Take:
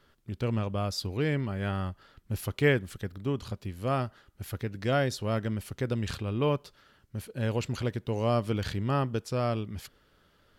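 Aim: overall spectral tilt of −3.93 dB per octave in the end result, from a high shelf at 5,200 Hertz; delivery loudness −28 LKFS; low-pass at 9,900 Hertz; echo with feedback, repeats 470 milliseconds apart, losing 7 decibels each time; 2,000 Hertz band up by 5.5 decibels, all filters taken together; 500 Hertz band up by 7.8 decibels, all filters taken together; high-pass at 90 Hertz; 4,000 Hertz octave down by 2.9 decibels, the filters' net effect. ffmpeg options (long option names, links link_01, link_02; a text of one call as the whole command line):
ffmpeg -i in.wav -af "highpass=90,lowpass=9900,equalizer=frequency=500:width_type=o:gain=9,equalizer=frequency=2000:width_type=o:gain=8,equalizer=frequency=4000:width_type=o:gain=-5.5,highshelf=frequency=5200:gain=-4.5,aecho=1:1:470|940|1410|1880|2350:0.447|0.201|0.0905|0.0407|0.0183,volume=-2dB" out.wav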